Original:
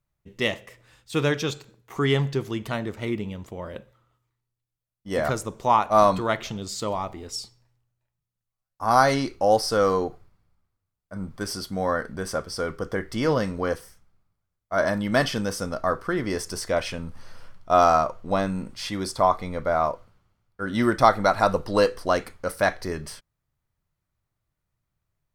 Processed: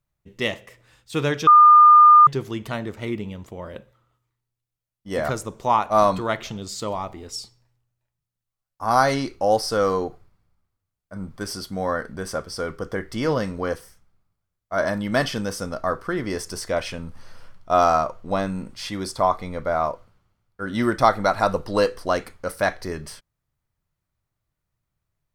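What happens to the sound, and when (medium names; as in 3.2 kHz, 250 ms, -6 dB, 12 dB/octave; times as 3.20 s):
1.47–2.27 s: bleep 1.21 kHz -7 dBFS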